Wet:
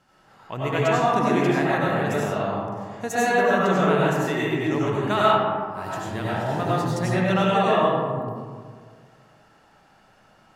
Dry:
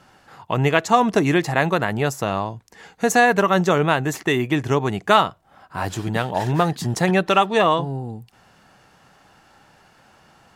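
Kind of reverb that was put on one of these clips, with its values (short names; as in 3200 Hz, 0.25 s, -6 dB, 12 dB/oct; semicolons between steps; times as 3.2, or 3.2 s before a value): digital reverb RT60 1.9 s, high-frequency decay 0.35×, pre-delay 55 ms, DRR -7 dB; gain -11 dB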